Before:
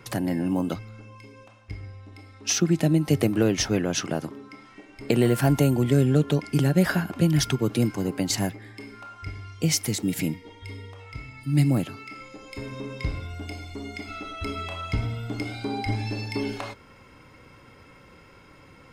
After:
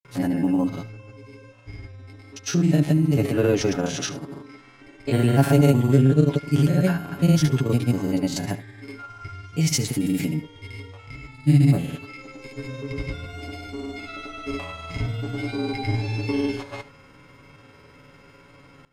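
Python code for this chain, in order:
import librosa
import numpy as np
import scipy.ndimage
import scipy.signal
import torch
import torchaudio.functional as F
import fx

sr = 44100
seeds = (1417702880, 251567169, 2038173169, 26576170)

y = fx.spec_steps(x, sr, hold_ms=50)
y = y + 0.56 * np.pad(y, (int(7.1 * sr / 1000.0), 0))[:len(y)]
y = fx.granulator(y, sr, seeds[0], grain_ms=100.0, per_s=20.0, spray_ms=100.0, spread_st=0)
y = y + 10.0 ** (-17.0 / 20.0) * np.pad(y, (int(74 * sr / 1000.0), 0))[:len(y)]
y = F.gain(torch.from_numpy(y), 2.5).numpy()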